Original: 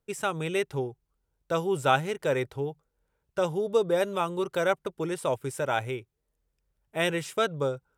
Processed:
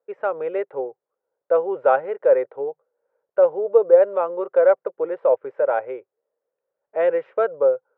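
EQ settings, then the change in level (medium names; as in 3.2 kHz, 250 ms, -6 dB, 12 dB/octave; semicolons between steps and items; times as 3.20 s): resonant high-pass 520 Hz, resonance Q 4.9; low-pass 1.8 kHz 24 dB/octave; 0.0 dB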